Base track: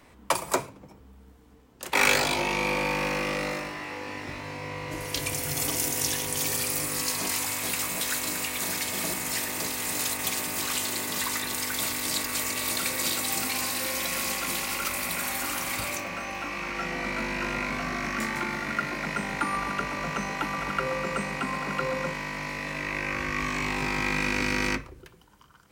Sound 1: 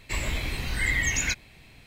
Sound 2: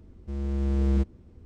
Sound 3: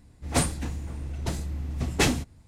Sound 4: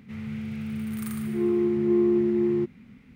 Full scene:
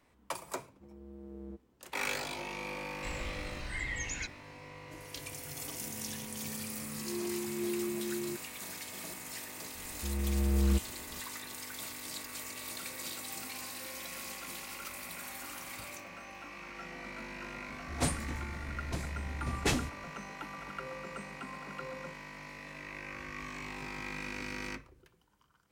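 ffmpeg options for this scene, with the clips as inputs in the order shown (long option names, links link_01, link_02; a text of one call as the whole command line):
ffmpeg -i bed.wav -i cue0.wav -i cue1.wav -i cue2.wav -i cue3.wav -filter_complex "[2:a]asplit=2[link_01][link_02];[0:a]volume=-13.5dB[link_03];[link_01]bandpass=frequency=410:width_type=q:width=0.98:csg=0[link_04];[1:a]lowpass=frequency=9300:width=0.5412,lowpass=frequency=9300:width=1.3066[link_05];[link_04]atrim=end=1.45,asetpts=PTS-STARTPTS,volume=-14dB,afade=type=in:duration=0.004:curve=hsin,afade=type=out:start_time=1.446:duration=0.004:curve=hsin,adelay=530[link_06];[link_05]atrim=end=1.86,asetpts=PTS-STARTPTS,volume=-12dB,afade=type=in:duration=0.004:curve=hsin,afade=type=out:start_time=1.856:duration=0.004:curve=hsin,adelay=2930[link_07];[4:a]atrim=end=3.15,asetpts=PTS-STARTPTS,volume=-14dB,afade=type=in:duration=0.004:curve=hsin,afade=type=out:start_time=3.146:duration=0.004:curve=hsin,adelay=5710[link_08];[link_02]atrim=end=1.45,asetpts=PTS-STARTPTS,volume=-4dB,afade=type=in:duration=0.004:curve=hsin,afade=type=out:start_time=1.446:duration=0.004:curve=hsin,adelay=9750[link_09];[3:a]atrim=end=2.47,asetpts=PTS-STARTPTS,volume=-7.5dB,afade=type=in:duration=0.004:curve=hsin,afade=type=out:start_time=2.466:duration=0.004:curve=hsin,adelay=17660[link_10];[link_03][link_06][link_07][link_08][link_09][link_10]amix=inputs=6:normalize=0" out.wav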